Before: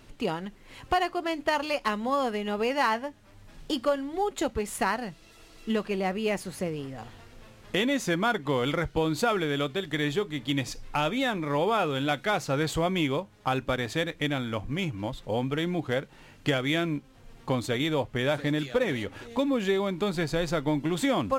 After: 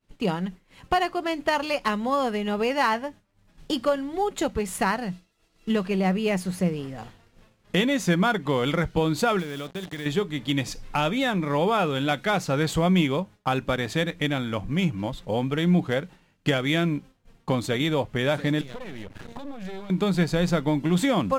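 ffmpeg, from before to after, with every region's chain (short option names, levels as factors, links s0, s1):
-filter_complex "[0:a]asettb=1/sr,asplit=3[s0][s1][s2];[s0]atrim=end=9.394[s3];[s1]atrim=start=9.39:end=10.06,asetpts=PTS-STARTPTS,afade=t=in:d=0.004:c=qsin,afade=t=out:st=0.666:d=0.004:c=qsin,acrusher=bits=5:mix=0:aa=0.5,acompressor=threshold=0.02:ratio=4:attack=3.2:release=140:knee=1:detection=peak[s4];[s2]atrim=start=10.056[s5];[s3][s4]acrossfade=d=0.004:c1=hsin:c2=qsin[s6];[s6][s5]acrossfade=d=0.004:c1=qsin:c2=hsin,asettb=1/sr,asplit=3[s7][s8][s9];[s7]atrim=end=18.614[s10];[s8]atrim=start=18.61:end=19.9,asetpts=PTS-STARTPTS,afade=t=in:d=0.004:c=qsin,afade=t=out:st=1.286:d=0.004:c=qsin,lowshelf=f=140:g=10.5,acompressor=threshold=0.0224:ratio=5:attack=3.2:release=140:knee=1:detection=peak,aeval=exprs='max(val(0),0)':c=same[s11];[s9]atrim=start=19.896[s12];[s10][s11]acrossfade=d=0.004:c1=hsin:c2=qsin[s13];[s13][s12]acrossfade=d=0.004:c1=qsin:c2=hsin,agate=range=0.0224:threshold=0.01:ratio=3:detection=peak,equalizer=f=180:t=o:w=0.2:g=11.5,volume=1.33"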